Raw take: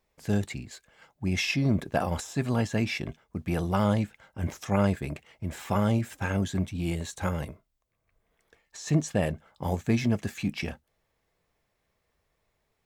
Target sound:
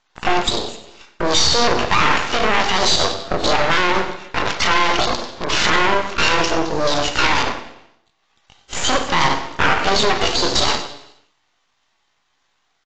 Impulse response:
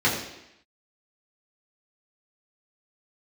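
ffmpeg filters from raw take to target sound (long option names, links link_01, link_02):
-filter_complex "[0:a]asoftclip=type=tanh:threshold=-22dB,acompressor=threshold=-31dB:ratio=10,highpass=470,lowpass=5200,asetrate=76340,aresample=44100,atempo=0.577676,afwtdn=0.00282,aecho=1:1:92|184|276:0.2|0.0519|0.0135,asplit=2[link_01][link_02];[1:a]atrim=start_sample=2205,adelay=32[link_03];[link_02][link_03]afir=irnorm=-1:irlink=0,volume=-23dB[link_04];[link_01][link_04]amix=inputs=2:normalize=0,aeval=exprs='max(val(0),0)':channel_layout=same,alimiter=level_in=34.5dB:limit=-1dB:release=50:level=0:latency=1,volume=-1.5dB" -ar 16000 -c:a aac -b:a 32k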